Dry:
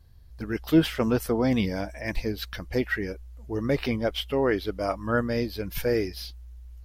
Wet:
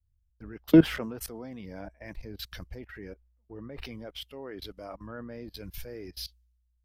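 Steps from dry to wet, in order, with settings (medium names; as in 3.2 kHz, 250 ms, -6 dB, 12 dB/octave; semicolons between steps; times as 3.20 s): level held to a coarse grid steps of 19 dB; three bands expanded up and down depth 100%; trim -2.5 dB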